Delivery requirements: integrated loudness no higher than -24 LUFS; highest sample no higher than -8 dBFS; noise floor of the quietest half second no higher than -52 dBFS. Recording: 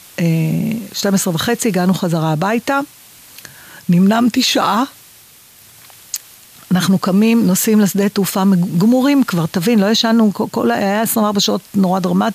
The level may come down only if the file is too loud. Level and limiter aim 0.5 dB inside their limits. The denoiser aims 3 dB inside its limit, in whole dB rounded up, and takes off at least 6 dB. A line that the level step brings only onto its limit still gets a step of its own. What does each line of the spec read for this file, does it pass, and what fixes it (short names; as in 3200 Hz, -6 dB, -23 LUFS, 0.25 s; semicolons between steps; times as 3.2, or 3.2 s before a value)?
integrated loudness -14.5 LUFS: fail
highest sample -5.0 dBFS: fail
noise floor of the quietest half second -44 dBFS: fail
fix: gain -10 dB